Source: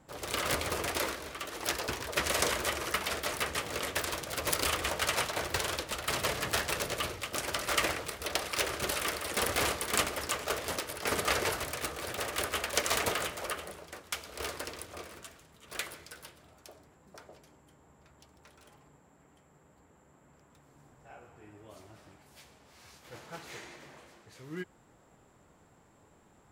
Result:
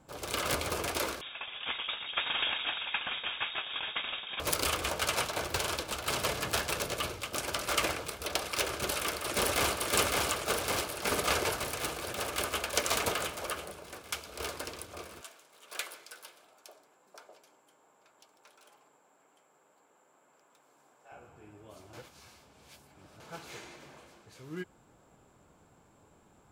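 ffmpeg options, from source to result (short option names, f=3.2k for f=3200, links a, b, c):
-filter_complex "[0:a]asettb=1/sr,asplit=3[a][b][c];[a]atrim=end=1.214[d];[b]atrim=start=1.21:end=4.4,asetpts=PTS-STARTPTS,afade=t=in:d=0.004:c=qsin,afade=t=out:st=3.186:d=0.004:c=qsin,lowpass=f=3.2k:t=q:w=0.5098,lowpass=f=3.2k:t=q:w=0.6013,lowpass=f=3.2k:t=q:w=0.9,lowpass=f=3.2k:t=q:w=2.563,afreqshift=-3800[e];[c]atrim=start=4.396[f];[d][e]acrossfade=d=0.004:c1=hsin:c2=qsin[g];[g][f]acrossfade=d=0.004:c1=qsin:c2=hsin,asplit=2[h][i];[i]afade=t=in:st=5.07:d=0.01,afade=t=out:st=5.72:d=0.01,aecho=0:1:520|1040|1560|2080:0.281838|0.0986434|0.0345252|0.0120838[j];[h][j]amix=inputs=2:normalize=0,asplit=2[k][l];[l]afade=t=in:st=8.68:d=0.01,afade=t=out:st=9.76:d=0.01,aecho=0:1:560|1120|1680|2240|2800|3360|3920|4480|5040|5600|6160|6720:0.794328|0.55603|0.389221|0.272455|0.190718|0.133503|0.0934519|0.0654163|0.0457914|0.032054|0.0224378|0.0157065[m];[k][m]amix=inputs=2:normalize=0,asettb=1/sr,asplit=3[n][o][p];[n]atrim=end=15.214[q];[o]atrim=start=15.21:end=21.12,asetpts=PTS-STARTPTS,afade=t=in:d=0.004:c=qsin,afade=t=out:st=5.906:d=0.004:c=qsin,highpass=470[r];[p]atrim=start=21.116[s];[q][r]acrossfade=d=0.004:c1=hsin:c2=qsin[t];[t][s]acrossfade=d=0.004:c1=qsin:c2=hsin,asplit=3[u][v][w];[u]atrim=end=21.932[x];[v]atrim=start=21.928:end=23.202,asetpts=PTS-STARTPTS,areverse[y];[w]atrim=start=23.198[z];[x][y]acrossfade=d=0.004:c1=hsin:c2=hsin[aa];[aa][z]acrossfade=d=0.004:c1=hsin:c2=hsin,bandreject=f=1.9k:w=8.3"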